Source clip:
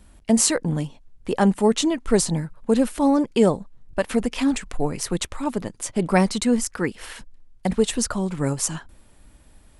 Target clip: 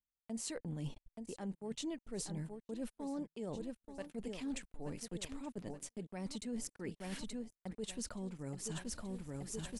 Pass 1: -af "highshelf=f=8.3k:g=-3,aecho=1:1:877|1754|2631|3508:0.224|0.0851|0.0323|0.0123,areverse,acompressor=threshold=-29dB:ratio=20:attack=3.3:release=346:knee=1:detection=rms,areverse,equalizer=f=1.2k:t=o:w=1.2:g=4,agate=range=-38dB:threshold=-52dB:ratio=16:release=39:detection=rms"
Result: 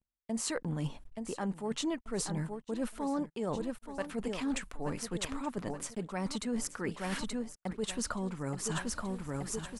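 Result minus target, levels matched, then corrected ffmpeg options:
compressor: peak gain reduction -6.5 dB; 1000 Hz band +5.5 dB
-af "highshelf=f=8.3k:g=-3,aecho=1:1:877|1754|2631|3508:0.224|0.0851|0.0323|0.0123,areverse,acompressor=threshold=-36dB:ratio=20:attack=3.3:release=346:knee=1:detection=rms,areverse,equalizer=f=1.2k:t=o:w=1.2:g=-5.5,agate=range=-38dB:threshold=-52dB:ratio=16:release=39:detection=rms"

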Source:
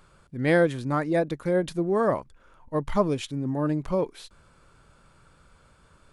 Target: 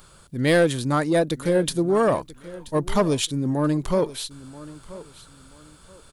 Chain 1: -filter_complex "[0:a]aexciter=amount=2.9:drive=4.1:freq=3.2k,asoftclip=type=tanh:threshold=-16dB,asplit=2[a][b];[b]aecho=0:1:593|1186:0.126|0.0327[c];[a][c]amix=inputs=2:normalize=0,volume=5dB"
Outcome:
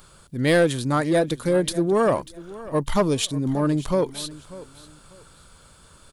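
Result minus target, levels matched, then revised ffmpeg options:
echo 0.388 s early
-filter_complex "[0:a]aexciter=amount=2.9:drive=4.1:freq=3.2k,asoftclip=type=tanh:threshold=-16dB,asplit=2[a][b];[b]aecho=0:1:981|1962:0.126|0.0327[c];[a][c]amix=inputs=2:normalize=0,volume=5dB"

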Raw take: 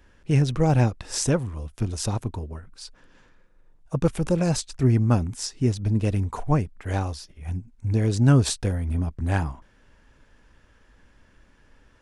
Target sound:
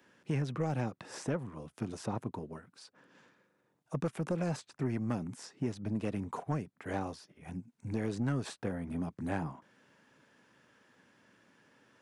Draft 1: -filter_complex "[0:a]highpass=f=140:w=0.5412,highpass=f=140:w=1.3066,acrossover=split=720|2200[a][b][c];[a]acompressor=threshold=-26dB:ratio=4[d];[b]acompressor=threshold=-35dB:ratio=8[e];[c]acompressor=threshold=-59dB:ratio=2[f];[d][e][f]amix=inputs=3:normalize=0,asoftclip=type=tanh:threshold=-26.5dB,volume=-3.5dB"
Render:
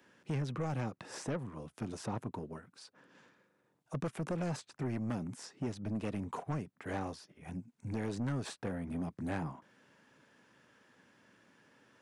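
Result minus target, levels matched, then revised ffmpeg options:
soft clip: distortion +8 dB
-filter_complex "[0:a]highpass=f=140:w=0.5412,highpass=f=140:w=1.3066,acrossover=split=720|2200[a][b][c];[a]acompressor=threshold=-26dB:ratio=4[d];[b]acompressor=threshold=-35dB:ratio=8[e];[c]acompressor=threshold=-59dB:ratio=2[f];[d][e][f]amix=inputs=3:normalize=0,asoftclip=type=tanh:threshold=-19.5dB,volume=-3.5dB"

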